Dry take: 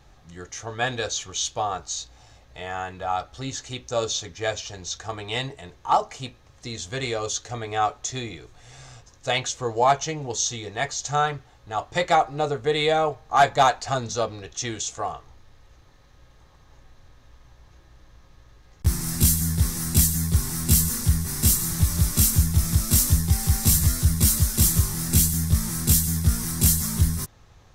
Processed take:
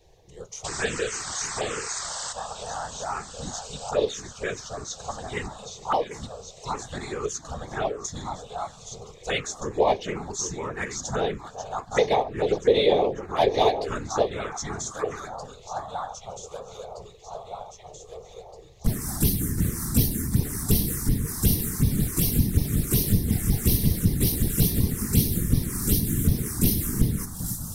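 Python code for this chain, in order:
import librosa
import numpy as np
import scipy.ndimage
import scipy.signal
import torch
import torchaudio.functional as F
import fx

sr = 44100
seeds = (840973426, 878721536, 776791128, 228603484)

y = fx.spec_paint(x, sr, seeds[0], shape='noise', start_s=0.64, length_s=1.69, low_hz=440.0, high_hz=8400.0, level_db=-29.0)
y = fx.echo_alternate(y, sr, ms=785, hz=1500.0, feedback_pct=71, wet_db=-7.5)
y = fx.whisperise(y, sr, seeds[1])
y = fx.peak_eq(y, sr, hz=440.0, db=10.0, octaves=0.51)
y = fx.env_phaser(y, sr, low_hz=220.0, high_hz=1400.0, full_db=-15.0)
y = y * librosa.db_to_amplitude(-1.5)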